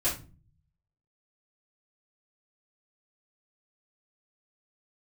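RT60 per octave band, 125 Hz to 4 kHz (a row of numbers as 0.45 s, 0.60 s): 1.0 s, 0.65 s, 0.40 s, 0.30 s, 0.30 s, 0.25 s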